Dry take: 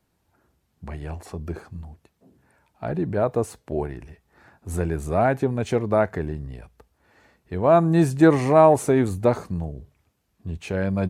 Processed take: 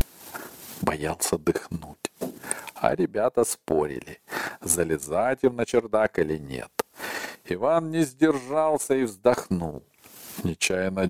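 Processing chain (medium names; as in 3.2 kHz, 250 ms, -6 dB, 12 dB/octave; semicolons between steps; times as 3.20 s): in parallel at +1 dB: upward compressor, threshold -20 dBFS; on the sum: high-pass 240 Hz 12 dB/octave; treble shelf 4.1 kHz +11.5 dB; reverse; compression 5:1, threshold -24 dBFS, peak gain reduction 19 dB; reverse; vibrato 0.34 Hz 42 cents; transient shaper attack +10 dB, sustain -11 dB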